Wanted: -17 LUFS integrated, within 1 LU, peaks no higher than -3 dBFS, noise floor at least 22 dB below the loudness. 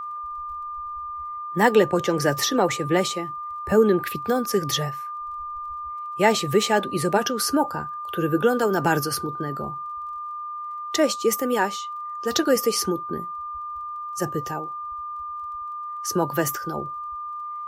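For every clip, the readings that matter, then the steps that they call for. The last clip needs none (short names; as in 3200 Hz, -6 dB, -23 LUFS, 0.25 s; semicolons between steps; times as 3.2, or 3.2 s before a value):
ticks 21/s; steady tone 1200 Hz; tone level -30 dBFS; loudness -24.5 LUFS; peak -4.0 dBFS; loudness target -17.0 LUFS
-> de-click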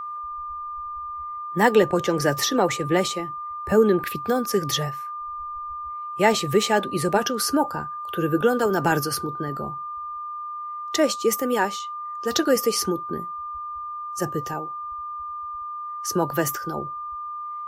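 ticks 0/s; steady tone 1200 Hz; tone level -30 dBFS
-> notch 1200 Hz, Q 30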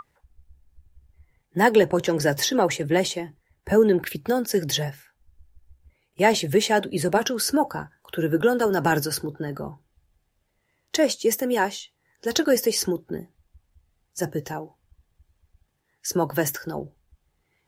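steady tone none; loudness -23.5 LUFS; peak -5.0 dBFS; loudness target -17.0 LUFS
-> gain +6.5 dB; limiter -3 dBFS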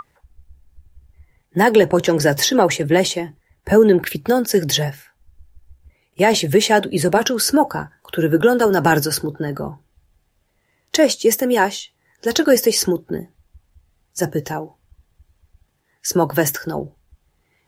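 loudness -17.5 LUFS; peak -3.0 dBFS; noise floor -67 dBFS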